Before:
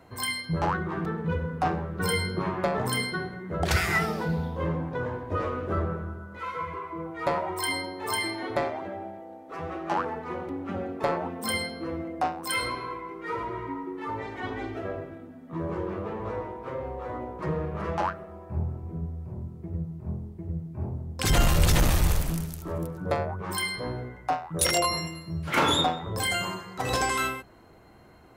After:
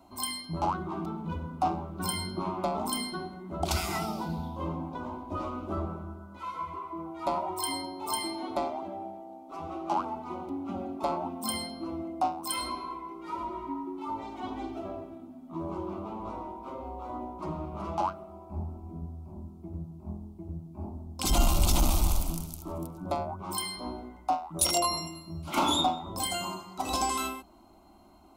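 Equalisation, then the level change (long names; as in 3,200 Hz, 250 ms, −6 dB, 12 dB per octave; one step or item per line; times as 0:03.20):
phaser with its sweep stopped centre 470 Hz, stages 6
0.0 dB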